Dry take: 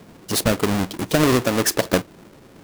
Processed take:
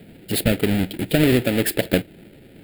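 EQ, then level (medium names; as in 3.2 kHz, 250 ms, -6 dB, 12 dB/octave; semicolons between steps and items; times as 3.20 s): static phaser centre 2.6 kHz, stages 4; +2.0 dB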